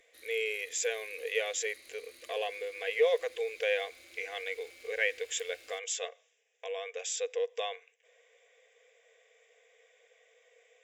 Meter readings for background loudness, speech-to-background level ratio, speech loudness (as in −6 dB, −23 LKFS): −53.5 LKFS, 19.5 dB, −34.0 LKFS